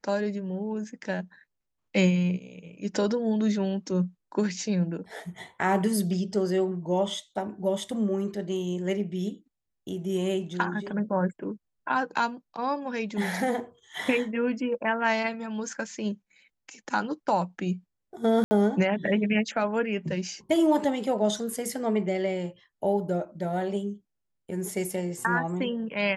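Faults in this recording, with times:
18.44–18.51 s: dropout 70 ms

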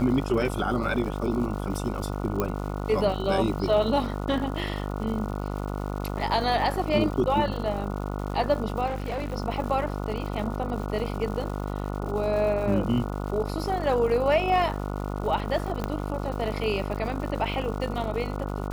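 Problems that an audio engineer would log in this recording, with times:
buzz 50 Hz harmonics 29 -31 dBFS
crackle 240 per s -36 dBFS
2.40 s: pop -12 dBFS
8.86–9.34 s: clipped -26 dBFS
15.84 s: pop -15 dBFS

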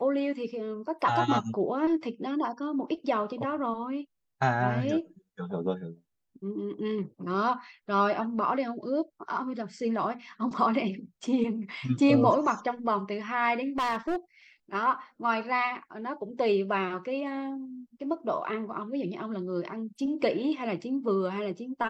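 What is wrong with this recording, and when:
13.63–14.16 s: clipped -25 dBFS

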